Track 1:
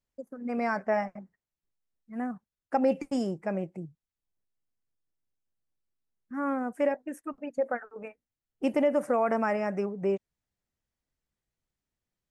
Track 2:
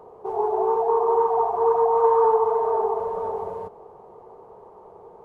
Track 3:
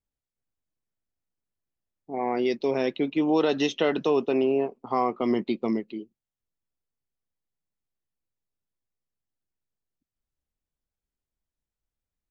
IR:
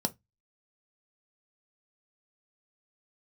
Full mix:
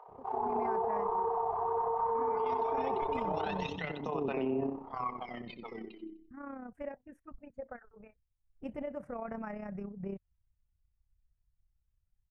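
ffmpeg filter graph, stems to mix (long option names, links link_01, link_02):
-filter_complex "[0:a]asubboost=boost=11.5:cutoff=77,volume=-11.5dB[link_01];[1:a]volume=-0.5dB,asplit=2[link_02][link_03];[link_03]volume=-9.5dB[link_04];[2:a]aphaser=in_gain=1:out_gain=1:delay=3.5:decay=0.75:speed=0.23:type=sinusoidal,volume=-7dB,asplit=2[link_05][link_06];[link_06]volume=-13.5dB[link_07];[link_02][link_05]amix=inputs=2:normalize=0,highpass=frequency=710:width=0.5412,highpass=frequency=710:width=1.3066,acompressor=threshold=-26dB:ratio=6,volume=0dB[link_08];[link_04][link_07]amix=inputs=2:normalize=0,aecho=0:1:84|168|252|336|420:1|0.33|0.109|0.0359|0.0119[link_09];[link_01][link_08][link_09]amix=inputs=3:normalize=0,bass=frequency=250:gain=12,treble=frequency=4000:gain=-14,tremolo=f=32:d=0.571,alimiter=level_in=0.5dB:limit=-24dB:level=0:latency=1:release=15,volume=-0.5dB"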